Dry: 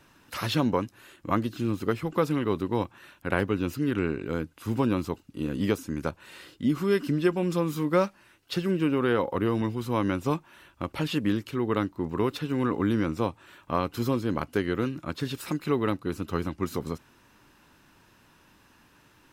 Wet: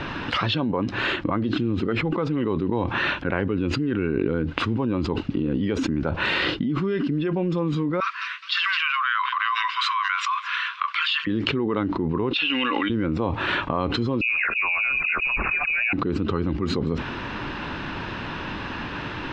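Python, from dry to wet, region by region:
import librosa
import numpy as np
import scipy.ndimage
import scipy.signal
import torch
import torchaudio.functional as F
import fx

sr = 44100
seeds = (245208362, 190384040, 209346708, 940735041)

y = fx.chain(x, sr, fx.cheby1_highpass(hz=1000.0, order=10),
    fx.echo_wet_highpass(ms=211, feedback_pct=35, hz=2800.0, wet_db=-16.5), at=(8.0, 11.27))
y = fx.chain(y, sr, fx.bandpass_q(hz=4100.0, q=0.63),
    fx.peak_eq(hz=2700.0, db=11.0, octaves=0.54),
    fx.comb(ms=3.6, depth=0.43), at=(12.33, 12.9))
y = fx.chain(y, sr, fx.peak_eq(hz=390.0, db=-6.0, octaves=0.22),
    fx.dispersion(late='highs', ms=78.0, hz=660.0),
    fx.freq_invert(carrier_hz=2700), at=(14.21, 15.93))
y = fx.noise_reduce_blind(y, sr, reduce_db=7)
y = scipy.signal.sosfilt(scipy.signal.butter(4, 3800.0, 'lowpass', fs=sr, output='sos'), y)
y = fx.env_flatten(y, sr, amount_pct=100)
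y = y * librosa.db_to_amplitude(-5.0)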